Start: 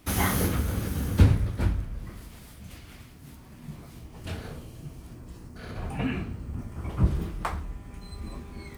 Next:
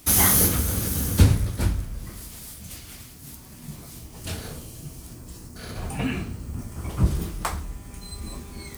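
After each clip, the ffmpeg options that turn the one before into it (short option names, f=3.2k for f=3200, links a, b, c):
-af "bass=f=250:g=0,treble=f=4k:g=13,volume=2dB"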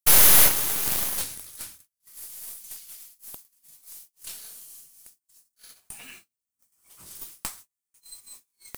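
-af "aderivative,aeval=exprs='0.668*(cos(1*acos(clip(val(0)/0.668,-1,1)))-cos(1*PI/2))+0.168*(cos(8*acos(clip(val(0)/0.668,-1,1)))-cos(8*PI/2))':c=same,agate=range=-37dB:threshold=-44dB:ratio=16:detection=peak,volume=-1dB"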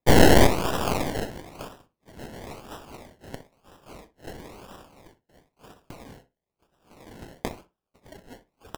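-filter_complex "[0:a]acrusher=samples=29:mix=1:aa=0.000001:lfo=1:lforange=17.4:lforate=1,asplit=2[a][b];[b]adelay=61,lowpass=f=2k:p=1,volume=-13dB,asplit=2[c][d];[d]adelay=61,lowpass=f=2k:p=1,volume=0.17[e];[a][c][e]amix=inputs=3:normalize=0"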